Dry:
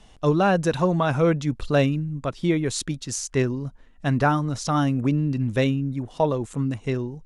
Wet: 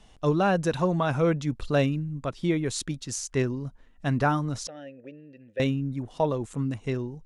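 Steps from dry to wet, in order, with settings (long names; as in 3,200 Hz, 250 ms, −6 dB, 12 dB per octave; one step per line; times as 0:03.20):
0:04.67–0:05.60: formant filter e
level −3.5 dB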